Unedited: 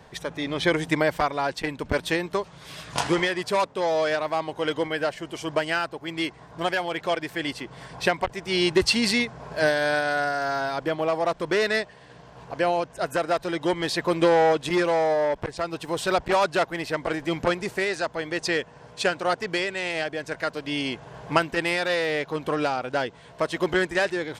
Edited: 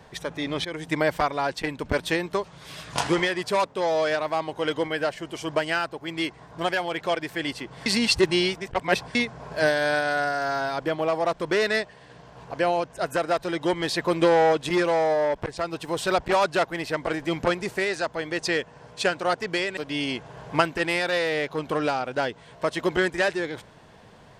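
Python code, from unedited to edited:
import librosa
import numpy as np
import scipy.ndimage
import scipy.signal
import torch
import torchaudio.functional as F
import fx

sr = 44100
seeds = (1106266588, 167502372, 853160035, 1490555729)

y = fx.edit(x, sr, fx.fade_in_from(start_s=0.65, length_s=0.42, floor_db=-17.5),
    fx.reverse_span(start_s=7.86, length_s=1.29),
    fx.cut(start_s=19.77, length_s=0.77), tone=tone)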